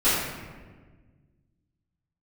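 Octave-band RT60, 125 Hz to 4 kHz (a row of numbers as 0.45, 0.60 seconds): 2.4, 2.1, 1.7, 1.3, 1.2, 0.85 seconds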